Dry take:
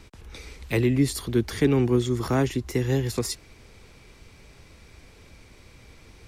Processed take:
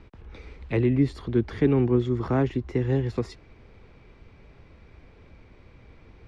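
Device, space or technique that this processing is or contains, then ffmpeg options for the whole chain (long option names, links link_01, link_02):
phone in a pocket: -af "lowpass=3600,highshelf=frequency=2300:gain=-10"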